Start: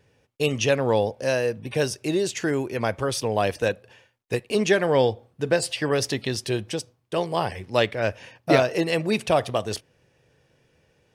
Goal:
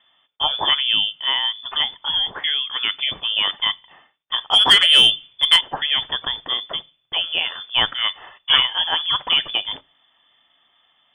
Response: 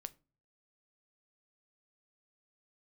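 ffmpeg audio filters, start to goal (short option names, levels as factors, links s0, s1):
-filter_complex "[0:a]aemphasis=mode=production:type=75fm,lowpass=f=3100:t=q:w=0.5098,lowpass=f=3100:t=q:w=0.6013,lowpass=f=3100:t=q:w=0.9,lowpass=f=3100:t=q:w=2.563,afreqshift=-3600,asplit=2[s0][s1];[1:a]atrim=start_sample=2205[s2];[s1][s2]afir=irnorm=-1:irlink=0,volume=1.12[s3];[s0][s3]amix=inputs=2:normalize=0,asettb=1/sr,asplit=3[s4][s5][s6];[s4]atrim=end=4.384[s7];[s5]atrim=start=4.38:end=5.61,asetpts=PTS-STARTPTS,afade=t=in:d=0.004:c=qsin,afade=t=out:st=1.226:d=0.004:c=qsin,acontrast=81[s8];[s6]atrim=start=5.606[s9];[s7][s8]acrossfade=d=0.004:c1=hsin:c2=qsin[s10];[s10][s9]acrossfade=d=0.004:c1=qsin:c2=hsin,volume=0.794"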